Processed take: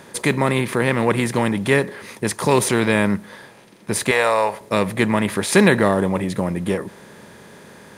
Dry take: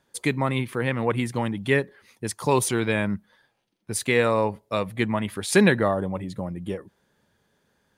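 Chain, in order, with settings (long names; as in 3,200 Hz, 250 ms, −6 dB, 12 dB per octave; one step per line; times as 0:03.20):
compressor on every frequency bin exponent 0.6
0:04.11–0:04.61: low shelf with overshoot 420 Hz −13.5 dB, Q 1.5
level +2 dB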